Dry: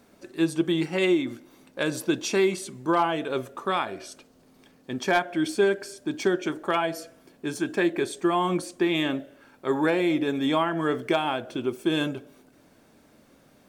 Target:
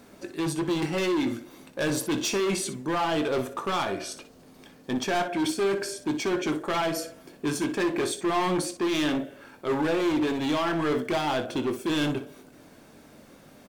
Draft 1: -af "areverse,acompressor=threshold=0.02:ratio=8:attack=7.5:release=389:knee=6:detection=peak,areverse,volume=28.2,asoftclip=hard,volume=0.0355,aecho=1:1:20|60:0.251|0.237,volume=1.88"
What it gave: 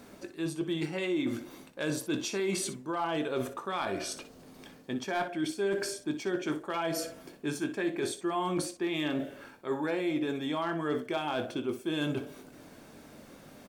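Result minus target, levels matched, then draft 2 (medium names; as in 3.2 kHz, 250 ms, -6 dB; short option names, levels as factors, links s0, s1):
compression: peak gain reduction +10.5 dB
-af "areverse,acompressor=threshold=0.0794:ratio=8:attack=7.5:release=389:knee=6:detection=peak,areverse,volume=28.2,asoftclip=hard,volume=0.0355,aecho=1:1:20|60:0.251|0.237,volume=1.88"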